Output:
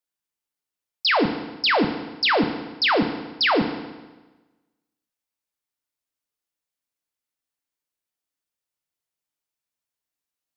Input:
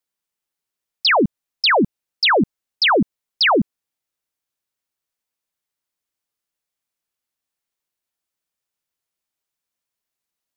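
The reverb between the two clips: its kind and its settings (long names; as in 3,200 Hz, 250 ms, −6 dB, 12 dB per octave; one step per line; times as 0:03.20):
feedback delay network reverb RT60 1.2 s, low-frequency decay 1.05×, high-frequency decay 0.9×, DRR 6 dB
level −5 dB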